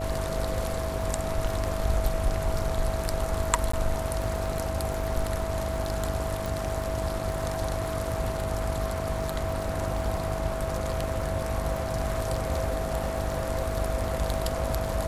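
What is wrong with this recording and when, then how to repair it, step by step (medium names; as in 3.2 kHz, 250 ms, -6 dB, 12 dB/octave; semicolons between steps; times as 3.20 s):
buzz 50 Hz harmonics 14 -34 dBFS
crackle 46 per s -36 dBFS
whine 650 Hz -33 dBFS
3.72–3.73 s: dropout 14 ms
6.46 s: pop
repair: de-click; de-hum 50 Hz, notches 14; band-stop 650 Hz, Q 30; interpolate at 3.72 s, 14 ms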